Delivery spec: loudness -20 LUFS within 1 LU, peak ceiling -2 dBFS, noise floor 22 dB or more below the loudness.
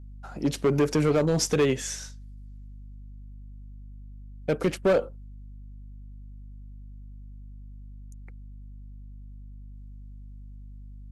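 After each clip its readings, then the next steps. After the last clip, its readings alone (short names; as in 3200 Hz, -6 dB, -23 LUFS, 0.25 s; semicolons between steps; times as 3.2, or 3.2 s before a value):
clipped 0.9%; flat tops at -16.5 dBFS; hum 50 Hz; harmonics up to 250 Hz; hum level -40 dBFS; loudness -25.5 LUFS; peak -16.5 dBFS; loudness target -20.0 LUFS
-> clip repair -16.5 dBFS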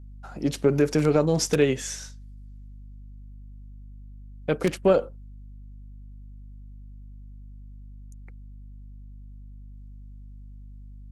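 clipped 0.0%; hum 50 Hz; harmonics up to 250 Hz; hum level -40 dBFS
-> de-hum 50 Hz, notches 5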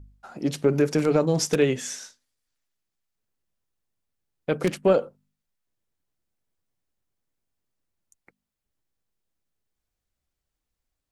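hum none; loudness -24.0 LUFS; peak -8.0 dBFS; loudness target -20.0 LUFS
-> gain +4 dB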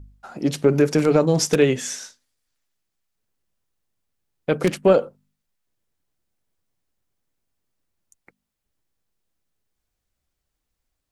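loudness -20.0 LUFS; peak -4.0 dBFS; noise floor -80 dBFS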